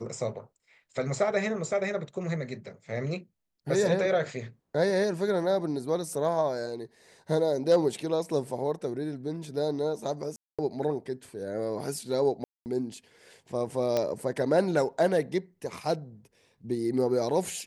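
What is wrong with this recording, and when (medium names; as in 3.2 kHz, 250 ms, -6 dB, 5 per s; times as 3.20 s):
10.36–10.59 s: dropout 226 ms
12.44–12.66 s: dropout 219 ms
13.97 s: pop -14 dBFS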